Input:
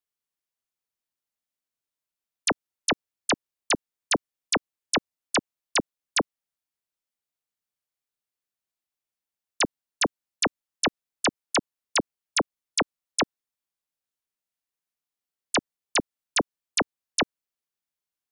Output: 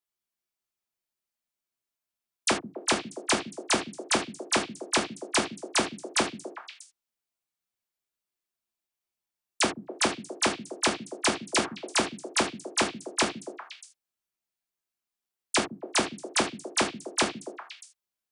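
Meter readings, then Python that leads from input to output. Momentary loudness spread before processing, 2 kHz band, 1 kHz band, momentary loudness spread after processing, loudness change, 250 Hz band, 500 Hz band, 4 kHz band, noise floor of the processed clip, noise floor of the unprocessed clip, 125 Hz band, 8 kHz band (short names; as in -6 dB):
1 LU, 0.0 dB, +0.5 dB, 13 LU, 0.0 dB, +0.5 dB, +0.5 dB, 0.0 dB, under -85 dBFS, under -85 dBFS, -0.5 dB, 0.0 dB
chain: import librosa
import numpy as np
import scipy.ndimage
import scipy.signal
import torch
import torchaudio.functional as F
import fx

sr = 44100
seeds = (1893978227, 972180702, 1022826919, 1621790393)

y = fx.echo_stepped(x, sr, ms=128, hz=170.0, octaves=1.4, feedback_pct=70, wet_db=-5.0)
y = fx.rev_gated(y, sr, seeds[0], gate_ms=110, shape='falling', drr_db=0.0)
y = F.gain(torch.from_numpy(y), -3.0).numpy()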